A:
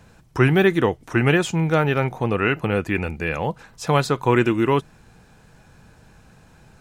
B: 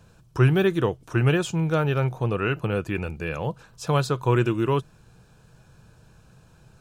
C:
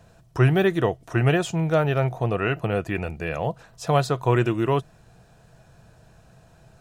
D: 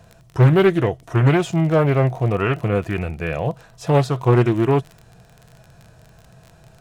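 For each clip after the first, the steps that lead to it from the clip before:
thirty-one-band EQ 125 Hz +6 dB, 250 Hz -6 dB, 800 Hz -5 dB, 2000 Hz -11 dB; gain -3.5 dB
small resonant body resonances 680/1900 Hz, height 12 dB, ringing for 30 ms
crackle 29/s -31 dBFS; harmonic-percussive split percussive -7 dB; Doppler distortion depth 0.58 ms; gain +6 dB

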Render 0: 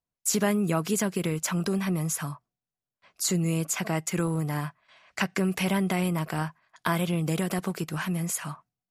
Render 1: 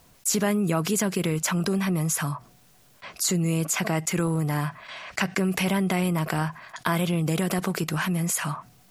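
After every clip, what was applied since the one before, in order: fast leveller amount 50%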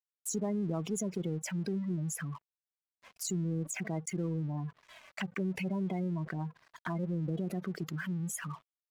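spectral gate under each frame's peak -15 dB strong; envelope flanger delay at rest 6.2 ms, full sweep at -22 dBFS; crossover distortion -47 dBFS; gain -8 dB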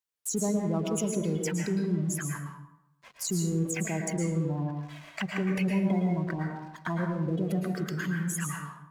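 plate-style reverb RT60 0.84 s, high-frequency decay 0.6×, pre-delay 0.1 s, DRR 1 dB; gain +4 dB

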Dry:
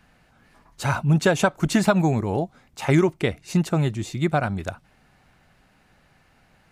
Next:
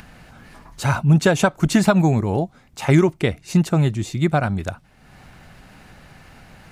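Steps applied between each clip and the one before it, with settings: tone controls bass +3 dB, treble +1 dB; upward compressor, threshold -36 dBFS; gain +2 dB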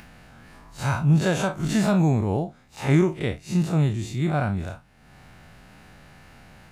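time blur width 86 ms; gain -2 dB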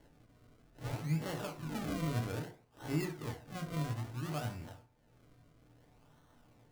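resonator 120 Hz, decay 0.34 s, harmonics all, mix 80%; decimation with a swept rate 35×, swing 100% 0.6 Hz; FDN reverb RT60 0.42 s, low-frequency decay 1×, high-frequency decay 0.55×, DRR 4 dB; gain -8 dB

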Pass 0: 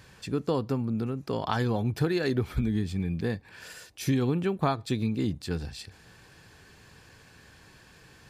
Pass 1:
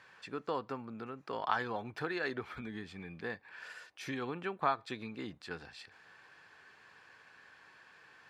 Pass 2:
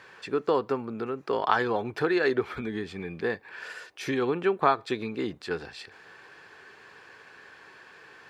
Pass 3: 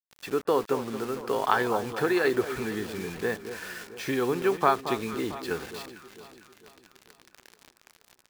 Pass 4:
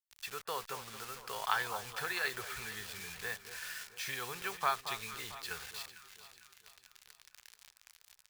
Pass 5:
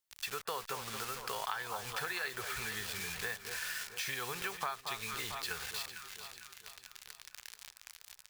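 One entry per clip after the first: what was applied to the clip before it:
band-pass 1400 Hz, Q 1
bell 400 Hz +8 dB 0.65 oct; gain +8 dB
bit-crush 7-bit; echo with dull and thin repeats by turns 0.225 s, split 1300 Hz, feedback 67%, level -10 dB
passive tone stack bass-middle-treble 10-0-10
compressor 5:1, threshold -43 dBFS, peak gain reduction 15.5 dB; gain +7.5 dB

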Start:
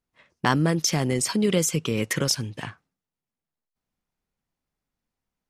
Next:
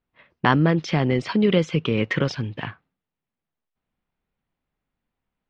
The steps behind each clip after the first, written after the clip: LPF 3500 Hz 24 dB/oct; gain +3.5 dB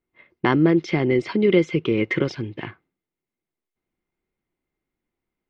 small resonant body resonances 350/2100 Hz, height 13 dB, ringing for 35 ms; gain -4 dB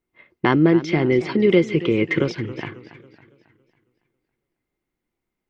warbling echo 0.276 s, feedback 44%, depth 135 cents, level -15 dB; gain +1.5 dB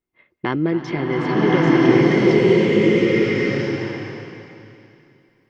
bloom reverb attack 1.31 s, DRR -8.5 dB; gain -5 dB

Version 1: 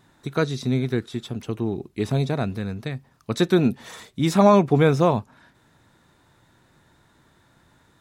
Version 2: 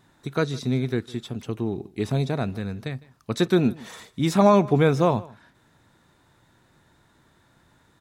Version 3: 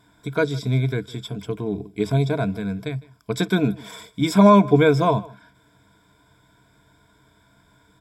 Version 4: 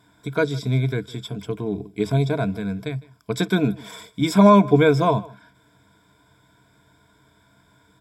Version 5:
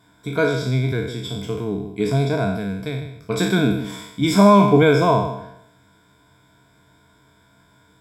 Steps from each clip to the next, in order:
echo 0.156 s -22 dB; gain -1.5 dB
ripple EQ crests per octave 1.7, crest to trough 14 dB
HPF 57 Hz
spectral trails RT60 0.80 s

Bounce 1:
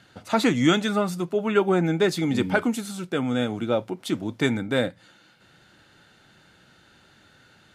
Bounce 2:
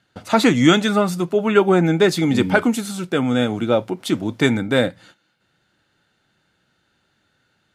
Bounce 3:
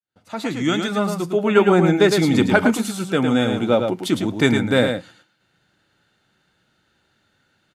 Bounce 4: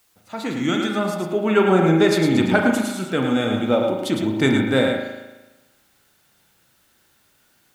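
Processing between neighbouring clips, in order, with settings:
gate -51 dBFS, range -16 dB; gain +6 dB
opening faded in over 1.64 s; echo 0.108 s -6 dB
requantised 10-bit, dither triangular; reverb RT60 1.1 s, pre-delay 37 ms, DRR 4 dB; gain -2.5 dB

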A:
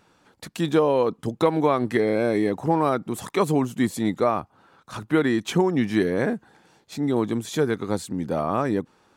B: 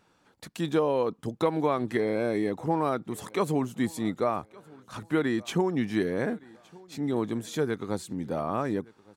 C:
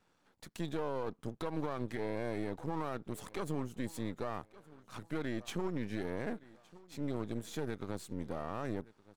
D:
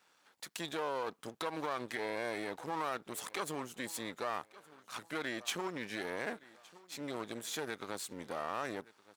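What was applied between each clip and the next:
feedback echo 1.166 s, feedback 34%, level -24 dB; gain -5.5 dB
half-wave gain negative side -12 dB; limiter -21.5 dBFS, peak gain reduction 8.5 dB; gain -4.5 dB
HPF 1300 Hz 6 dB/oct; gain +8.5 dB

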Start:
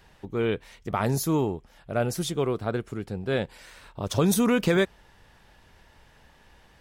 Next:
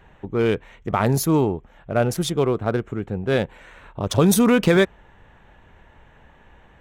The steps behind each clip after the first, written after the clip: Wiener smoothing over 9 samples; gain +6 dB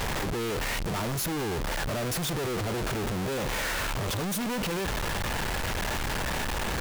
infinite clipping; gain -7.5 dB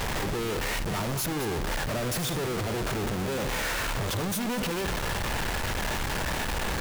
reverse delay 0.121 s, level -9 dB

